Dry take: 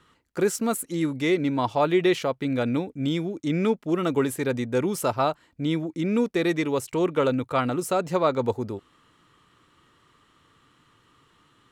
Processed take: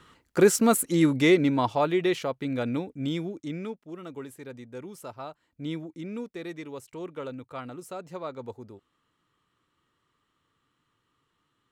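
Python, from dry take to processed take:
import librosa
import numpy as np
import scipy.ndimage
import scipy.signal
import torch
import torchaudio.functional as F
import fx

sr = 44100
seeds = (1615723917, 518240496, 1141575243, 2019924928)

y = fx.gain(x, sr, db=fx.line((1.2, 4.5), (1.96, -4.0), (3.29, -4.0), (3.82, -16.0), (5.3, -16.0), (5.68, -7.5), (6.32, -14.0)))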